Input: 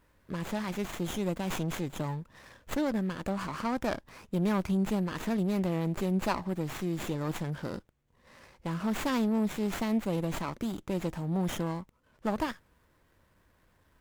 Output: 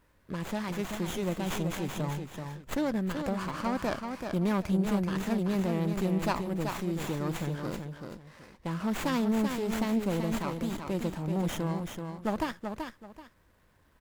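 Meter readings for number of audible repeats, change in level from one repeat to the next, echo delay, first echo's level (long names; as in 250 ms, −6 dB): 2, −12.0 dB, 382 ms, −6.0 dB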